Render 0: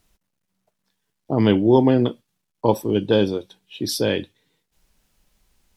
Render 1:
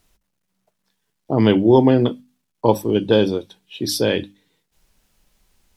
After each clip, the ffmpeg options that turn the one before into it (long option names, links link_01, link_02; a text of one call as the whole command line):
ffmpeg -i in.wav -af "bandreject=frequency=50:width_type=h:width=6,bandreject=frequency=100:width_type=h:width=6,bandreject=frequency=150:width_type=h:width=6,bandreject=frequency=200:width_type=h:width=6,bandreject=frequency=250:width_type=h:width=6,bandreject=frequency=300:width_type=h:width=6,volume=2.5dB" out.wav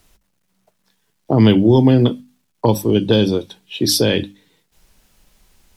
ffmpeg -i in.wav -filter_complex "[0:a]acrossover=split=230|3000[link_01][link_02][link_03];[link_02]acompressor=threshold=-22dB:ratio=6[link_04];[link_01][link_04][link_03]amix=inputs=3:normalize=0,volume=7dB" out.wav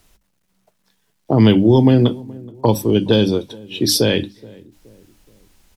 ffmpeg -i in.wav -filter_complex "[0:a]asplit=2[link_01][link_02];[link_02]adelay=424,lowpass=frequency=820:poles=1,volume=-22dB,asplit=2[link_03][link_04];[link_04]adelay=424,lowpass=frequency=820:poles=1,volume=0.46,asplit=2[link_05][link_06];[link_06]adelay=424,lowpass=frequency=820:poles=1,volume=0.46[link_07];[link_01][link_03][link_05][link_07]amix=inputs=4:normalize=0" out.wav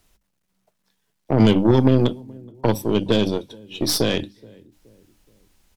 ffmpeg -i in.wav -af "aeval=exprs='0.891*(cos(1*acos(clip(val(0)/0.891,-1,1)))-cos(1*PI/2))+0.112*(cos(3*acos(clip(val(0)/0.891,-1,1)))-cos(3*PI/2))+0.0631*(cos(6*acos(clip(val(0)/0.891,-1,1)))-cos(6*PI/2))':channel_layout=same,volume=-2dB" out.wav